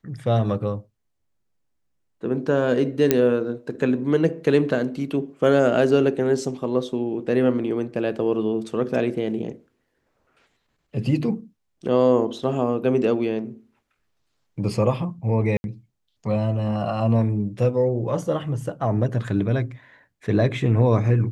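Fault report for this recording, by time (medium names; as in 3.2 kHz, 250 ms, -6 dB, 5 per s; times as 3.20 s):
3.11 s: pop -3 dBFS
15.57–15.64 s: dropout 71 ms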